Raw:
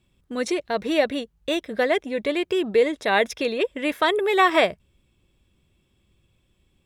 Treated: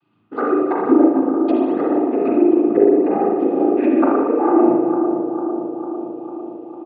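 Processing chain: treble ducked by the level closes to 330 Hz, closed at -19.5 dBFS; rippled Chebyshev low-pass 4700 Hz, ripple 3 dB; resonant high shelf 2300 Hz -7 dB, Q 1.5; comb 6.5 ms, depth 86%; noise vocoder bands 16; small resonant body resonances 310/800/1200/2500 Hz, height 13 dB, ringing for 25 ms; on a send: analogue delay 0.45 s, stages 4096, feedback 66%, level -8 dB; on the sum: spring tank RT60 1.5 s, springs 37/57 ms, chirp 40 ms, DRR -3.5 dB; ending taper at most 120 dB/s; gain -1.5 dB

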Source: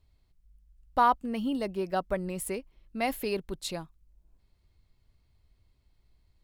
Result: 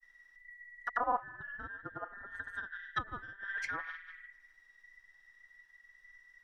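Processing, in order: band inversion scrambler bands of 2000 Hz; narrowing echo 60 ms, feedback 71%, band-pass 2200 Hz, level -8.5 dB; grains 0.1 s, pitch spread up and down by 0 st; treble ducked by the level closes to 530 Hz, closed at -30 dBFS; gain +3.5 dB

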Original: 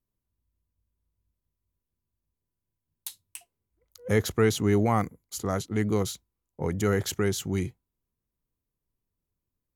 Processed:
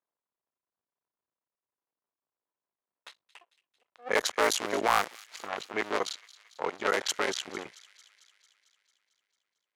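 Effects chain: cycle switcher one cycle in 2, muted; HPF 700 Hz 12 dB/oct; low-pass opened by the level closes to 1400 Hz, open at -26.5 dBFS; added harmonics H 5 -15 dB, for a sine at -10.5 dBFS; on a send: thin delay 0.224 s, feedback 65%, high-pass 2500 Hz, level -17 dB; on the sum: gain +2 dB

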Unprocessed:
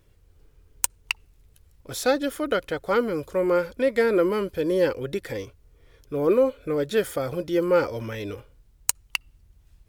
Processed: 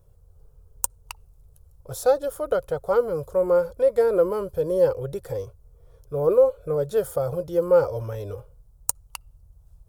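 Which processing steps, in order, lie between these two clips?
EQ curve 150 Hz 0 dB, 260 Hz -20 dB, 490 Hz 0 dB, 780 Hz -2 dB, 1300 Hz -7 dB, 2000 Hz -22 dB, 9900 Hz -4 dB; gain +4 dB

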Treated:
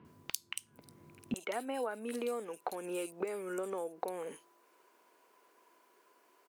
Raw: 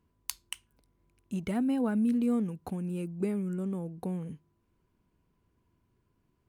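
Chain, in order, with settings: HPF 110 Hz 24 dB/oct, from 1.34 s 460 Hz; compressor 6:1, threshold -51 dBFS, peak gain reduction 20.5 dB; bands offset in time lows, highs 50 ms, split 3300 Hz; gain +16 dB

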